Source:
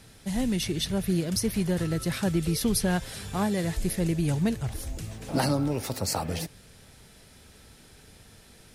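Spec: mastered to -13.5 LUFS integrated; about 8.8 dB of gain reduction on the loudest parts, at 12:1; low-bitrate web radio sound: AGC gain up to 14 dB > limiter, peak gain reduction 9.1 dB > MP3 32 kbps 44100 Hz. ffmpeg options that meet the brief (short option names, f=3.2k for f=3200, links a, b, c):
-af "acompressor=threshold=-30dB:ratio=12,dynaudnorm=m=14dB,alimiter=level_in=6.5dB:limit=-24dB:level=0:latency=1,volume=-6.5dB,volume=26.5dB" -ar 44100 -c:a libmp3lame -b:a 32k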